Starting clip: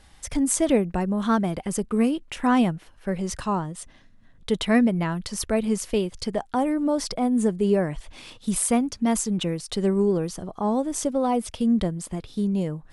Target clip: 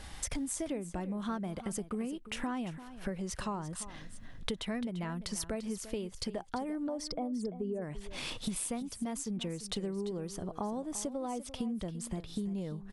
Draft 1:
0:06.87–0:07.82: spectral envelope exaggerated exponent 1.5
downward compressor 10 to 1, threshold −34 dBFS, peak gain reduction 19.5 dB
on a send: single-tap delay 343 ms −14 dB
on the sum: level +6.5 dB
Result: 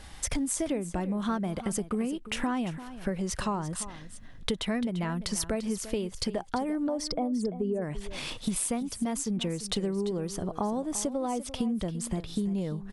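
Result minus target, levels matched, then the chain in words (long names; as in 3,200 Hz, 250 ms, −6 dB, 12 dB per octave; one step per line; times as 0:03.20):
downward compressor: peak gain reduction −6.5 dB
0:06.87–0:07.82: spectral envelope exaggerated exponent 1.5
downward compressor 10 to 1, threshold −41 dBFS, peak gain reduction 26 dB
on a send: single-tap delay 343 ms −14 dB
on the sum: level +6.5 dB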